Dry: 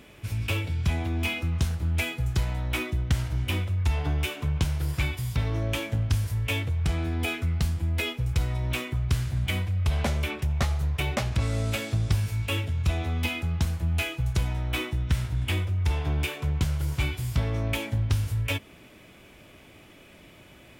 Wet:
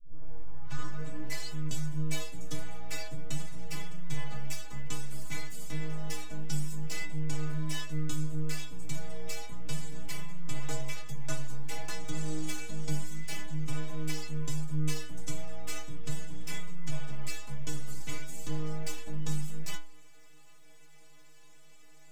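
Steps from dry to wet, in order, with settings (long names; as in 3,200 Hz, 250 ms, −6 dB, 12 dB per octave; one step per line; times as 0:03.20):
turntable start at the beginning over 1.40 s
speed change −6%
pitch vibrato 1.6 Hz 12 cents
full-wave rectification
parametric band 7,300 Hz +11.5 dB 0.59 octaves
stiff-string resonator 150 Hz, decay 0.45 s, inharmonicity 0.008
level +4.5 dB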